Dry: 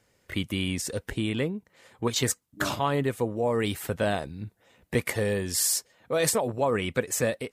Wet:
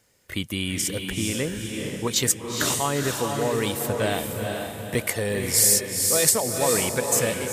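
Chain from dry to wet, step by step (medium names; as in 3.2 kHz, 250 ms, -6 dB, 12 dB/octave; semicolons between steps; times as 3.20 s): treble shelf 4.5 kHz +9.5 dB; echo that smears into a reverb 462 ms, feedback 43%, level -3.5 dB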